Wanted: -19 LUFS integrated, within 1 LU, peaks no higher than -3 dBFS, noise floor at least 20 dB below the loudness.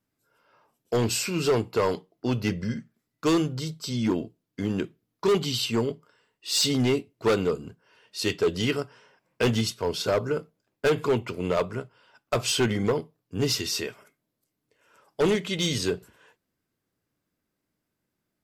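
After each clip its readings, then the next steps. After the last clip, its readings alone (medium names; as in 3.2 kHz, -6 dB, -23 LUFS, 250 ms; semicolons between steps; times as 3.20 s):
clipped samples 1.5%; clipping level -17.5 dBFS; loudness -27.0 LUFS; peak level -17.5 dBFS; loudness target -19.0 LUFS
-> clip repair -17.5 dBFS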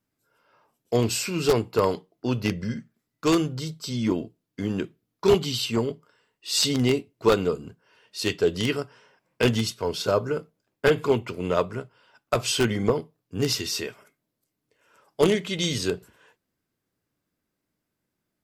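clipped samples 0.0%; loudness -25.5 LUFS; peak level -8.5 dBFS; loudness target -19.0 LUFS
-> trim +6.5 dB; peak limiter -3 dBFS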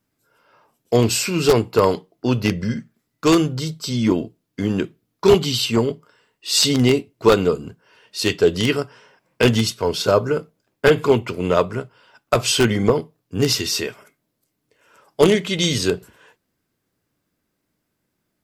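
loudness -19.5 LUFS; peak level -3.0 dBFS; noise floor -75 dBFS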